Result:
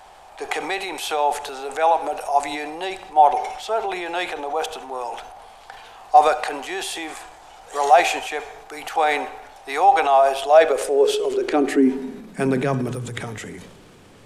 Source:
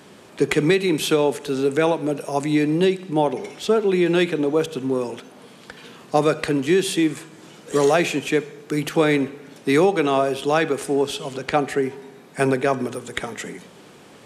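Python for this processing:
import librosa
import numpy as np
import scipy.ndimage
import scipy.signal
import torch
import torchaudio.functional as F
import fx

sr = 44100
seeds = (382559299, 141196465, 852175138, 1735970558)

y = fx.filter_sweep_highpass(x, sr, from_hz=770.0, to_hz=85.0, start_s=10.32, end_s=13.59, q=7.6)
y = fx.dmg_noise_colour(y, sr, seeds[0], colour='brown', level_db=-54.0)
y = fx.transient(y, sr, attack_db=-2, sustain_db=6)
y = y * 10.0 ** (-3.5 / 20.0)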